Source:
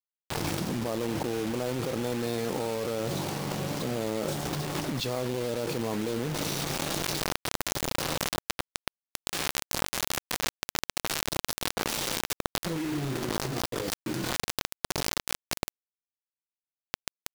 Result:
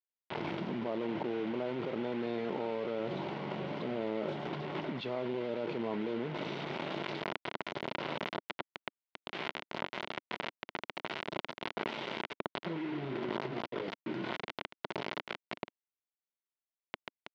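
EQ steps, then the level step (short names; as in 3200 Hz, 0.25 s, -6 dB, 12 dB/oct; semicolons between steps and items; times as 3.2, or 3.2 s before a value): speaker cabinet 280–2600 Hz, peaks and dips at 290 Hz -7 dB, 500 Hz -9 dB, 780 Hz -7 dB, 1200 Hz -9 dB, 1700 Hz -9 dB, 2500 Hz -6 dB; +2.5 dB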